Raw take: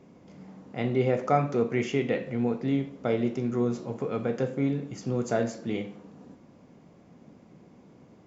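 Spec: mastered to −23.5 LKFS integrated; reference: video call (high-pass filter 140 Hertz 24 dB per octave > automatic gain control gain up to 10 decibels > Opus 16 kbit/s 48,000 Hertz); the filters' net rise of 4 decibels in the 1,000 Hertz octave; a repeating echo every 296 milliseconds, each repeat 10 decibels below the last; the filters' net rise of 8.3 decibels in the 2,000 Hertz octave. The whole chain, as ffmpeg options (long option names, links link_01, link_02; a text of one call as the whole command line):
ffmpeg -i in.wav -af "highpass=frequency=140:width=0.5412,highpass=frequency=140:width=1.3066,equalizer=frequency=1000:width_type=o:gain=4.5,equalizer=frequency=2000:width_type=o:gain=8.5,aecho=1:1:296|592|888|1184:0.316|0.101|0.0324|0.0104,dynaudnorm=maxgain=10dB,volume=4dB" -ar 48000 -c:a libopus -b:a 16k out.opus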